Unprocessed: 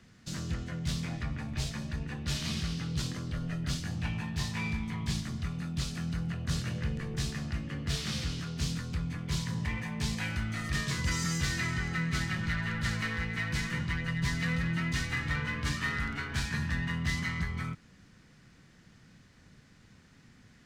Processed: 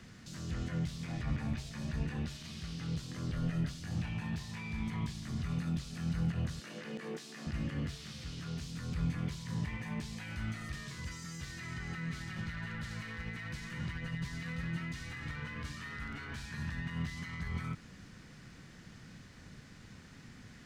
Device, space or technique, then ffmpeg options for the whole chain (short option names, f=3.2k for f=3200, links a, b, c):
de-esser from a sidechain: -filter_complex "[0:a]asettb=1/sr,asplit=3[a][b][c];[a]atrim=end=6.604[d];[b]atrim=start=6.6:end=7.47,asetpts=PTS-STARTPTS,afade=t=in:d=0.004:c=qsin,afade=t=out:st=0.866:d=0.004:c=qsin,highpass=f=240:w=0.5412,highpass=f=240:w=1.3066[e];[c]atrim=start=7.466[f];[d][e]acrossfade=d=0.004:c1=hsin:c2=qsin[g];[g][f]acrossfade=d=0.004:c1=qsin:c2=hsin,asplit=2[h][i];[i]highpass=f=5.2k:p=1,apad=whole_len=910685[j];[h][j]sidechaincompress=threshold=-57dB:ratio=5:attack=0.6:release=55,volume=5dB"